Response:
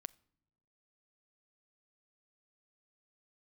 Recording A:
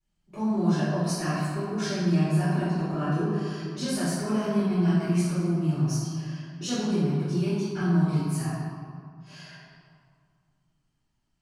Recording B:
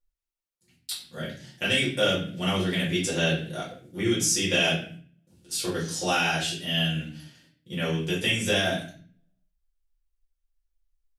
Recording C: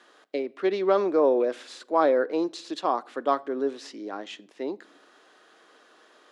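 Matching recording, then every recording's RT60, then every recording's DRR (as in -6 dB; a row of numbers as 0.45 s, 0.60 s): C; 2.1 s, 0.45 s, no single decay rate; -18.0 dB, -7.5 dB, 18.5 dB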